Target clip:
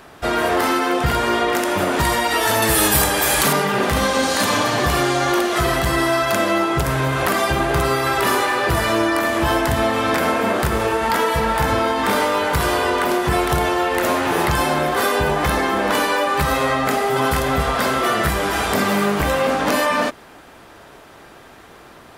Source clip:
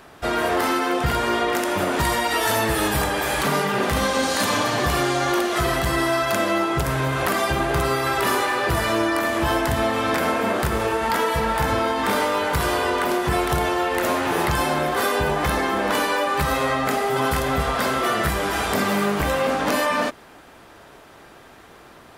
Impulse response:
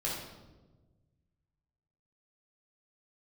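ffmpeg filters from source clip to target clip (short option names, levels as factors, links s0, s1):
-filter_complex "[0:a]asettb=1/sr,asplit=3[s0][s1][s2];[s0]atrim=end=2.624[s3];[s1]atrim=start=2.62:end=3.53,asetpts=PTS-STARTPTS,afade=t=in:d=0.004:c=qsin,afade=t=out:st=0.906:d=0.004:c=qsin,highshelf=f=4900:g=11.5[s4];[s2]atrim=start=3.526[s5];[s3][s4]acrossfade=d=0.004:c1=hsin:c2=qsin[s6];[s6][s5]acrossfade=d=0.004:c1=qsin:c2=hsin,volume=1.41"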